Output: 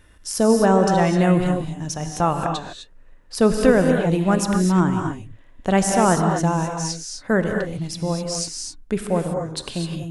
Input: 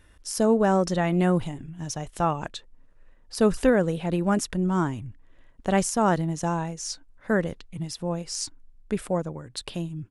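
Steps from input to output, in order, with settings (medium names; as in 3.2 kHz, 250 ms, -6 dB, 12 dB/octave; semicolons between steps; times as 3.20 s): gated-style reverb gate 280 ms rising, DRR 3.5 dB; trim +4 dB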